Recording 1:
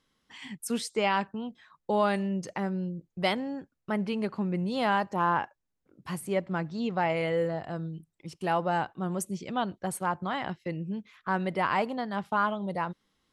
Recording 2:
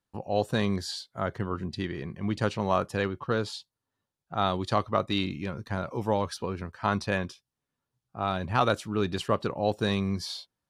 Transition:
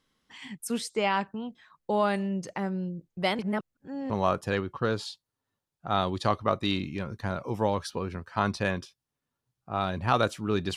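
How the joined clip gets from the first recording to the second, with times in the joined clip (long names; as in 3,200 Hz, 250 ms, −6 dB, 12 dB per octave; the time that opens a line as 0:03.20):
recording 1
0:03.39–0:04.10: reverse
0:04.10: continue with recording 2 from 0:02.57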